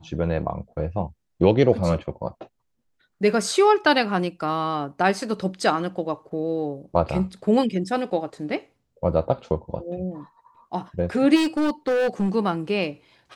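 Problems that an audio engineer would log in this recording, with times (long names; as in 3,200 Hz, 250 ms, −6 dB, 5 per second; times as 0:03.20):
0:11.35–0:12.36: clipping −18.5 dBFS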